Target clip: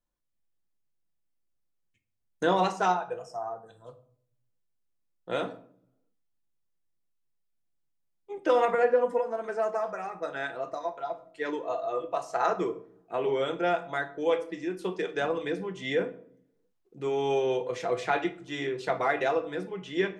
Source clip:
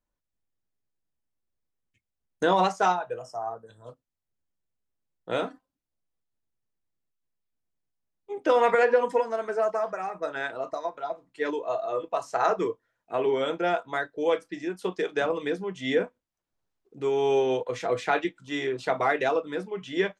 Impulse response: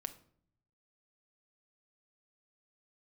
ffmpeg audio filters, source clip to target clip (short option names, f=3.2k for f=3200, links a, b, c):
-filter_complex "[0:a]asettb=1/sr,asplit=3[a][b][c];[a]atrim=end=8.654[d];[b]atrim=start=8.65:end=9.44,asetpts=PTS-STARTPTS,afade=t=in:d=0.004:c=qsin,afade=t=out:st=0.786:d=0.004:c=qsin,equalizer=f=4.3k:w=0.42:g=-9[e];[c]atrim=start=9.436[f];[d][e]acrossfade=d=0.004:c1=hsin:c2=qsin[g];[g][f]acrossfade=d=0.004:c1=qsin:c2=hsin[h];[1:a]atrim=start_sample=2205[i];[h][i]afir=irnorm=-1:irlink=0"